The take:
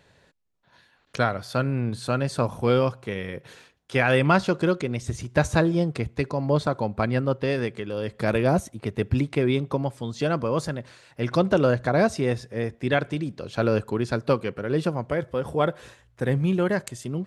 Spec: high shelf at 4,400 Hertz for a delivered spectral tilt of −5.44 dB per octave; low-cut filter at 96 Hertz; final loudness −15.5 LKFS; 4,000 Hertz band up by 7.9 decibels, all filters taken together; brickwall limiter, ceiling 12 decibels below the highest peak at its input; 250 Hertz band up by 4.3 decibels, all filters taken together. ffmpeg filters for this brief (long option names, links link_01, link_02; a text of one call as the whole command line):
ffmpeg -i in.wav -af "highpass=96,equalizer=frequency=250:width_type=o:gain=6,equalizer=frequency=4000:width_type=o:gain=6.5,highshelf=frequency=4400:gain=6.5,volume=10.5dB,alimiter=limit=-3dB:level=0:latency=1" out.wav